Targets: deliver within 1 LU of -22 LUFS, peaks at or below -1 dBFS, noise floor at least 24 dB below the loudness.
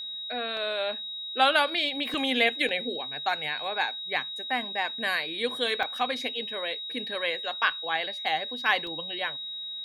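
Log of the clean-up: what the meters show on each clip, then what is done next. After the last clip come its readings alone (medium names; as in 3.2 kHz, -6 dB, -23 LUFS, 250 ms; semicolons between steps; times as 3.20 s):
dropouts 5; longest dropout 2.3 ms; steady tone 3.8 kHz; tone level -34 dBFS; loudness -28.0 LUFS; peak level -9.0 dBFS; loudness target -22.0 LUFS
-> interpolate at 0.57/2.14/2.69/5.83/8.87 s, 2.3 ms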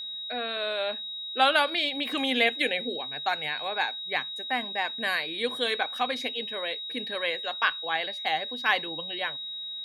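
dropouts 0; steady tone 3.8 kHz; tone level -34 dBFS
-> band-stop 3.8 kHz, Q 30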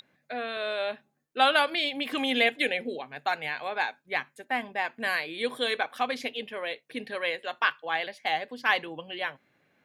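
steady tone not found; loudness -29.0 LUFS; peak level -8.5 dBFS; loudness target -22.0 LUFS
-> trim +7 dB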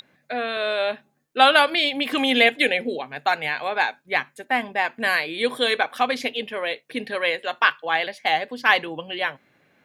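loudness -22.0 LUFS; peak level -1.5 dBFS; noise floor -65 dBFS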